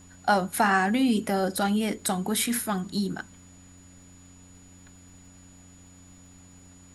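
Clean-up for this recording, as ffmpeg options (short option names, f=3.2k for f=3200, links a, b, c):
-af "adeclick=t=4,bandreject=f=90.6:t=h:w=4,bandreject=f=181.2:t=h:w=4,bandreject=f=271.8:t=h:w=4,bandreject=f=6.9k:w=30,agate=range=-21dB:threshold=-44dB"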